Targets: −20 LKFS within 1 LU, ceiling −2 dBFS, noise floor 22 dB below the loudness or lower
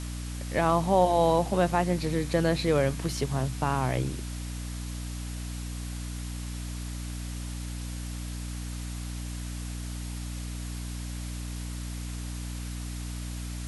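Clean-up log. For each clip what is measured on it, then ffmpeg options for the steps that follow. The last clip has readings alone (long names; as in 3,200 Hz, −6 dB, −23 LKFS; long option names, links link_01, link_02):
mains hum 60 Hz; hum harmonics up to 300 Hz; level of the hum −33 dBFS; background noise floor −36 dBFS; target noise floor −53 dBFS; integrated loudness −30.5 LKFS; sample peak −10.5 dBFS; target loudness −20.0 LKFS
→ -af "bandreject=frequency=60:width_type=h:width=4,bandreject=frequency=120:width_type=h:width=4,bandreject=frequency=180:width_type=h:width=4,bandreject=frequency=240:width_type=h:width=4,bandreject=frequency=300:width_type=h:width=4"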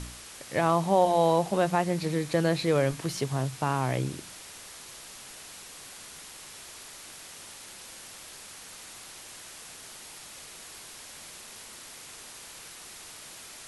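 mains hum none found; background noise floor −46 dBFS; target noise floor −49 dBFS
→ -af "afftdn=noise_reduction=6:noise_floor=-46"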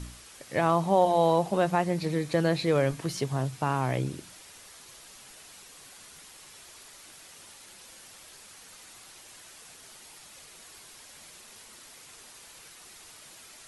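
background noise floor −51 dBFS; integrated loudness −26.5 LKFS; sample peak −11.0 dBFS; target loudness −20.0 LKFS
→ -af "volume=6.5dB"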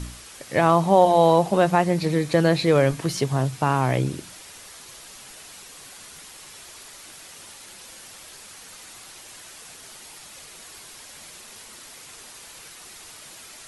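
integrated loudness −20.0 LKFS; sample peak −4.5 dBFS; background noise floor −44 dBFS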